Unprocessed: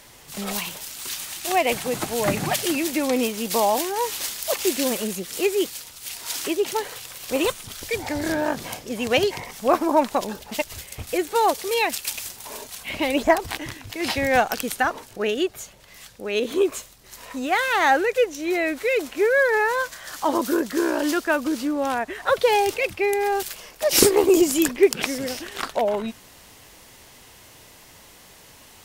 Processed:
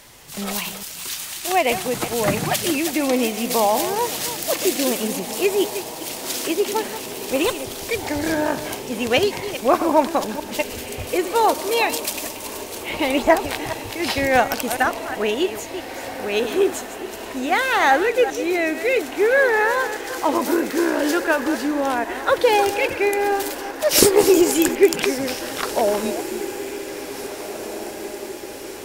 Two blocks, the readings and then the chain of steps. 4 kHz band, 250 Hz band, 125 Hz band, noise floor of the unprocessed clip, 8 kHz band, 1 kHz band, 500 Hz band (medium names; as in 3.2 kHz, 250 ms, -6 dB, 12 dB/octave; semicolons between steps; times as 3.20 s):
+2.5 dB, +2.5 dB, +3.0 dB, -49 dBFS, +2.5 dB, +2.5 dB, +2.5 dB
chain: chunks repeated in reverse 208 ms, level -11 dB; echo that smears into a reverb 1850 ms, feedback 63%, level -13 dB; trim +2 dB